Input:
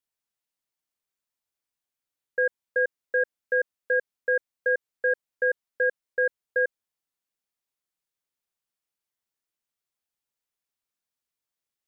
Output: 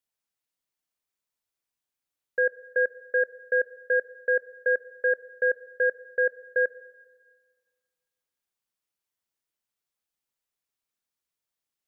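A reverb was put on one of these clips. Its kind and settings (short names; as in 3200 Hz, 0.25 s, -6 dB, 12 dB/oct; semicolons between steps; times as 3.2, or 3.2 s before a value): plate-style reverb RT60 1.6 s, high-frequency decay 1×, DRR 17.5 dB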